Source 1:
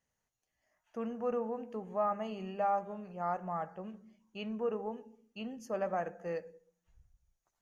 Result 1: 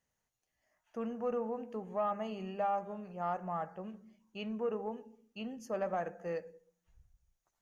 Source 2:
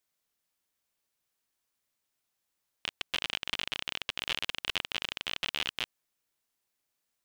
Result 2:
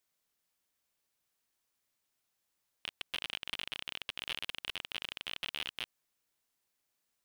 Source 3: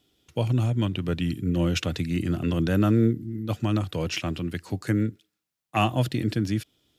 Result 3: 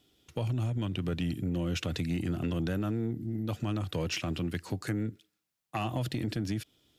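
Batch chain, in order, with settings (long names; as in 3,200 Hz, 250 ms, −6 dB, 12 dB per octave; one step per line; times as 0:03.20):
brickwall limiter −18 dBFS
downward compressor, threshold −27 dBFS
soft clipping −21.5 dBFS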